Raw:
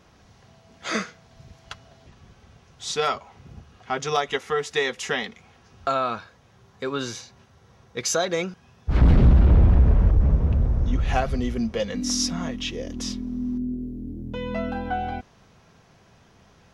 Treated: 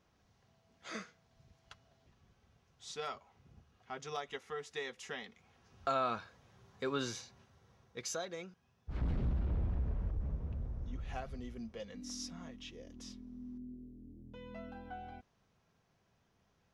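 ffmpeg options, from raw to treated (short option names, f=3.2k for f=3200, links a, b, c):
-af "volume=-8dB,afade=t=in:st=5.25:d=0.9:silence=0.334965,afade=t=out:st=7.06:d=1.3:silence=0.266073"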